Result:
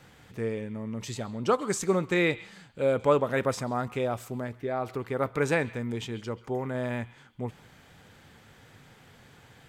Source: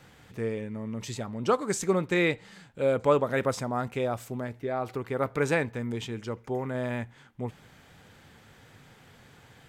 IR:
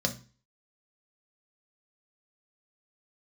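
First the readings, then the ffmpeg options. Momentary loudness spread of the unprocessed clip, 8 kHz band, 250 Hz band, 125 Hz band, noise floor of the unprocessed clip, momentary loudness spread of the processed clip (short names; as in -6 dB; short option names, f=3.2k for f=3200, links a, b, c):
13 LU, 0.0 dB, 0.0 dB, 0.0 dB, -56 dBFS, 13 LU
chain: -filter_complex "[0:a]asplit=2[a][b];[b]highpass=1.2k[c];[1:a]atrim=start_sample=2205,asetrate=28665,aresample=44100,adelay=133[d];[c][d]afir=irnorm=-1:irlink=0,volume=-26.5dB[e];[a][e]amix=inputs=2:normalize=0"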